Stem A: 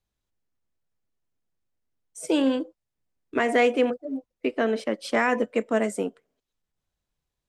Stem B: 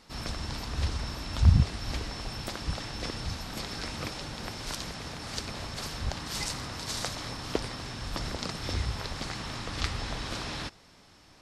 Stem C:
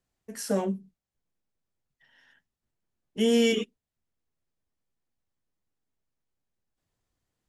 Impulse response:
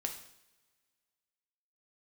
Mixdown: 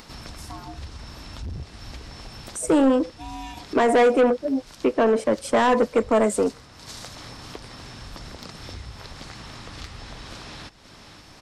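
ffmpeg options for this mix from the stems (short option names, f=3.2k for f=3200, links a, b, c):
-filter_complex "[0:a]equalizer=f=250:t=o:w=1:g=4,equalizer=f=500:t=o:w=1:g=5,equalizer=f=1k:t=o:w=1:g=8,equalizer=f=4k:t=o:w=1:g=-9,equalizer=f=8k:t=o:w=1:g=8,adelay=400,volume=2.5dB[a];[1:a]asoftclip=type=hard:threshold=-19.5dB,volume=-10.5dB,asplit=2[b][c];[c]volume=-20.5dB[d];[2:a]aeval=exprs='val(0)*sin(2*PI*510*n/s)':c=same,volume=-12dB[e];[d]aecho=0:1:530:1[f];[a][b][e][f]amix=inputs=4:normalize=0,acompressor=mode=upward:threshold=-30dB:ratio=2.5,asoftclip=type=tanh:threshold=-12.5dB"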